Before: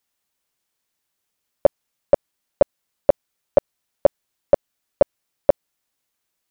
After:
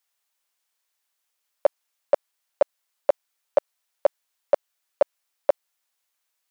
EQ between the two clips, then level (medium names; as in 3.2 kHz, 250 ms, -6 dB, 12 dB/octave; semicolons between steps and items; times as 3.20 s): high-pass 660 Hz 12 dB/octave; 0.0 dB